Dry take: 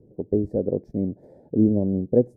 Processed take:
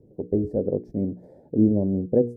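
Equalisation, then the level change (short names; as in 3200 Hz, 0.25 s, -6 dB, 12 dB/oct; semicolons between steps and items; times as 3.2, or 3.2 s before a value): notches 60/120/180/240/300/360/420/480 Hz; 0.0 dB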